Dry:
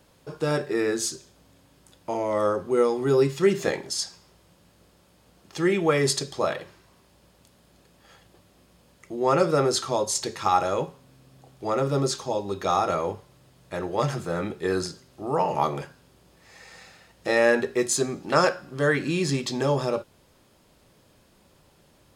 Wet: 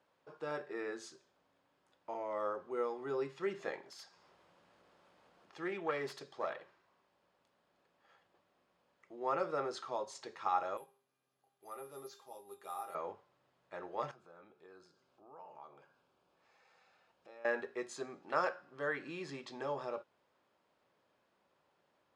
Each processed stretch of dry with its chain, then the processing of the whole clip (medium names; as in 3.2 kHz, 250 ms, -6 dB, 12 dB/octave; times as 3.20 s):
3.87–6.50 s: self-modulated delay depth 0.094 ms + upward compressor, threshold -39 dBFS
10.77–12.95 s: treble shelf 3.6 kHz +9.5 dB + feedback comb 400 Hz, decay 0.24 s, mix 80% + careless resampling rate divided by 4×, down filtered, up zero stuff
14.11–17.45 s: compression 2:1, threshold -51 dBFS + band-stop 1.9 kHz, Q 5.2
whole clip: low-pass 1.1 kHz 12 dB/octave; differentiator; trim +8 dB